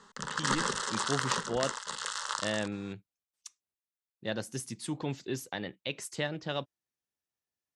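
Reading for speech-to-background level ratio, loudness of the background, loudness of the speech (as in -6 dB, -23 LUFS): -3.5 dB, -33.5 LUFS, -37.0 LUFS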